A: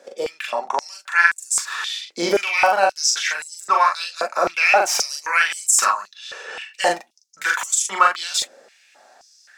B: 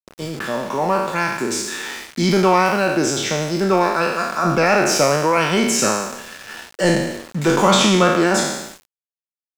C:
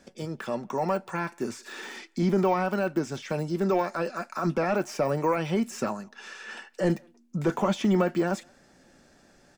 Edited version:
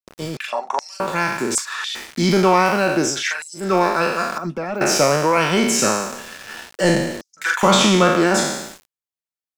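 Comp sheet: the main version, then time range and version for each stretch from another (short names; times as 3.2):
B
0.37–1 from A
1.55–1.95 from A
3.12–3.65 from A, crossfade 0.24 s
4.38–4.81 from C
7.21–7.63 from A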